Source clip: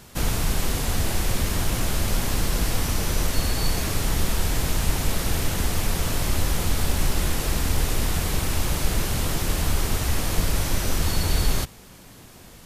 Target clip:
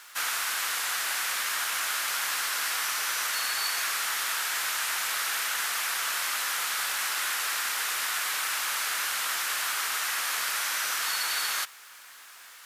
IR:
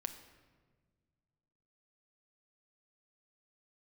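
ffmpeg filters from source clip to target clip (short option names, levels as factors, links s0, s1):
-af "acrusher=bits=8:mix=0:aa=0.5,highpass=f=1400:t=q:w=2"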